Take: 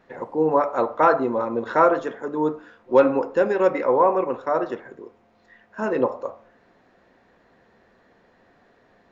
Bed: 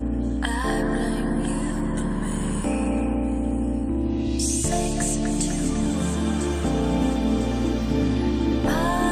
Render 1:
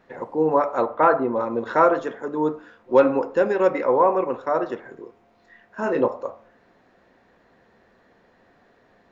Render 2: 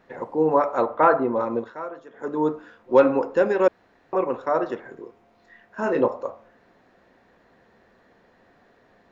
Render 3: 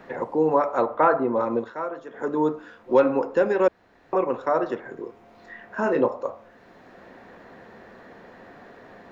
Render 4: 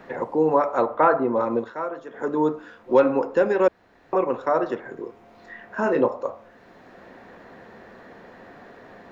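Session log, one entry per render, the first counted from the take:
0.85–1.34 s: low-pass 3.5 kHz -> 2.1 kHz; 4.81–6.08 s: doubling 26 ms -8 dB
1.57–2.26 s: dip -17 dB, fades 0.14 s; 3.68–4.13 s: room tone
three bands compressed up and down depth 40%
trim +1 dB

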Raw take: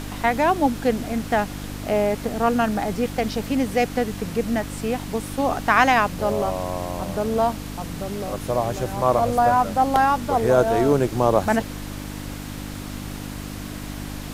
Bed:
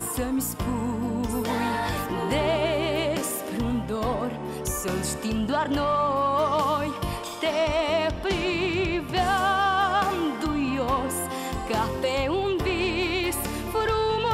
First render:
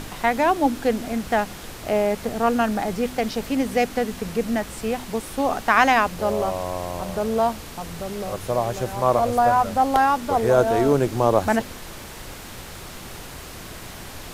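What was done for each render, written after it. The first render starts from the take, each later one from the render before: de-hum 50 Hz, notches 6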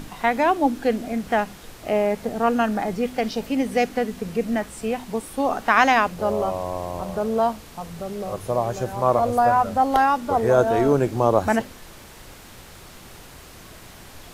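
noise print and reduce 6 dB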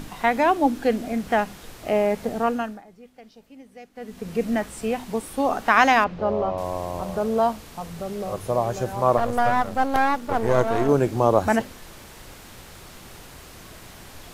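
2.34–4.42 s: dip -23 dB, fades 0.48 s; 6.04–6.58 s: distance through air 220 m; 9.17–10.89 s: partial rectifier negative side -12 dB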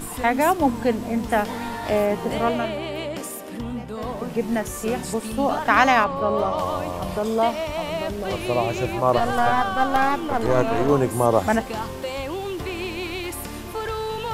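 add bed -4 dB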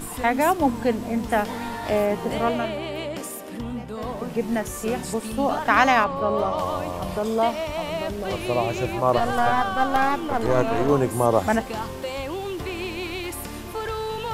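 trim -1 dB

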